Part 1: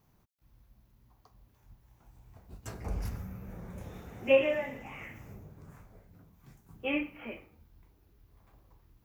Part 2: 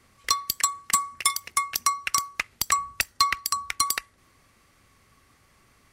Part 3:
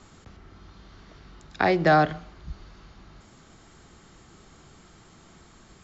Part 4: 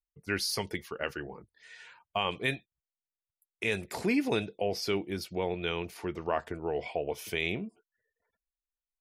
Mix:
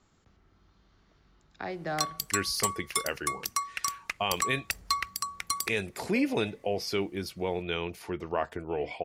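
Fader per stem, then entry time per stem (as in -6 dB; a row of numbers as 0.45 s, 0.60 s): -18.5 dB, -7.0 dB, -15.0 dB, +0.5 dB; 1.85 s, 1.70 s, 0.00 s, 2.05 s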